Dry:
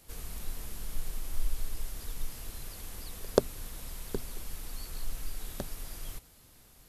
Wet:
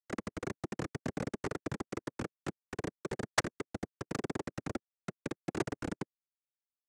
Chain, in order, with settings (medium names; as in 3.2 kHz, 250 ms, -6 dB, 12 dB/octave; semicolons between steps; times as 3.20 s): random holes in the spectrogram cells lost 35%; low-pass that closes with the level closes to 1.6 kHz, closed at -30 dBFS; reverb removal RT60 0.6 s; in parallel at +3 dB: compression 8:1, threshold -39 dBFS, peak gain reduction 16.5 dB; on the sum: Schmitt trigger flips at -30.5 dBFS; noise-vocoded speech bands 3; transformer saturation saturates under 1 kHz; trim +10.5 dB